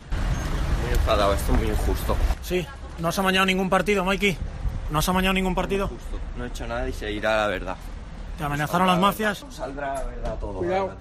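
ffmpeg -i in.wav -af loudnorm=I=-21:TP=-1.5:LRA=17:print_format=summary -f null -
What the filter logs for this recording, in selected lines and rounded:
Input Integrated:    -24.8 LUFS
Input True Peak:      -6.8 dBTP
Input LRA:             3.0 LU
Input Threshold:     -35.0 LUFS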